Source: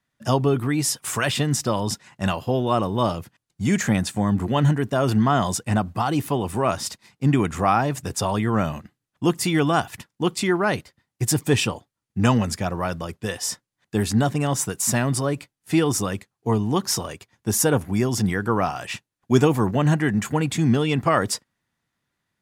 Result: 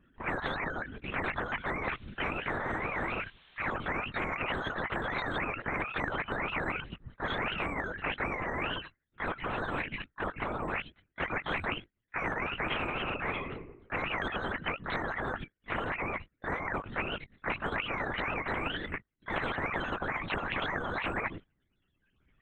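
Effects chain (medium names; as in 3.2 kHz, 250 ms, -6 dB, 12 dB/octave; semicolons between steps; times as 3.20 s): spectrum inverted on a logarithmic axis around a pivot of 470 Hz; 12.60–13.51 s: reverb throw, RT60 0.88 s, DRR 3.5 dB; reverb removal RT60 0.96 s; static phaser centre 310 Hz, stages 4; 1.82–3.73 s: added noise blue -66 dBFS; 15.29–15.79 s: comb 2.1 ms, depth 56%; LPC vocoder at 8 kHz whisper; spectrum-flattening compressor 10:1; trim -8.5 dB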